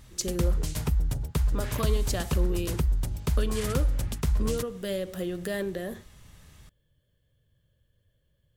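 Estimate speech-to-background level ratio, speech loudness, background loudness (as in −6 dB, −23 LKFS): −4.5 dB, −34.0 LKFS, −29.5 LKFS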